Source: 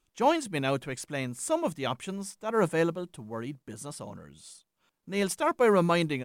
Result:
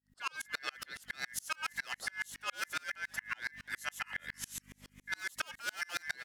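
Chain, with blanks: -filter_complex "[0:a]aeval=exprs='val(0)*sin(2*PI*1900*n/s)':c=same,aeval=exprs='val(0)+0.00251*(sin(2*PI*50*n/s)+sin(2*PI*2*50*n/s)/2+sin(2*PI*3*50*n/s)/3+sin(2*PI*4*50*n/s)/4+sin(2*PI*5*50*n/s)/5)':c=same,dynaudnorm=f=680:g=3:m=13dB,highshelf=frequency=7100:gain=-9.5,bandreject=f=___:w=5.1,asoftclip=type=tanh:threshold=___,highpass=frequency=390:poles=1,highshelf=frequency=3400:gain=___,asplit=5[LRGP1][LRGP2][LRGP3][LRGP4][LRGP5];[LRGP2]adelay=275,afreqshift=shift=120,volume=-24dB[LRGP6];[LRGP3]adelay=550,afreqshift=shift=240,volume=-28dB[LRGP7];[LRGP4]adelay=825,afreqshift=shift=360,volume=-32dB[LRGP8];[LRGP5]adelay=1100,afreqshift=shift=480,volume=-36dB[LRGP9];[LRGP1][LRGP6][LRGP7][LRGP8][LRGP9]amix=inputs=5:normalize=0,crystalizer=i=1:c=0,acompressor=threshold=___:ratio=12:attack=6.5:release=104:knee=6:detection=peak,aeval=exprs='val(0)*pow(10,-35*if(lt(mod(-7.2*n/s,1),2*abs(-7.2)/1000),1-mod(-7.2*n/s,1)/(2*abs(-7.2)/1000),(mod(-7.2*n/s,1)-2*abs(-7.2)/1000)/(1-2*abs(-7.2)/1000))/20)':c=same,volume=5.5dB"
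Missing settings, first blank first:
2300, -21dB, 4, -34dB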